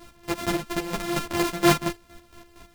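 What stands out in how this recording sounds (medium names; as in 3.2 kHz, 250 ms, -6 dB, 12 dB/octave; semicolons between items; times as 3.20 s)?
a buzz of ramps at a fixed pitch in blocks of 128 samples; chopped level 4.3 Hz, depth 65%, duty 40%; a shimmering, thickened sound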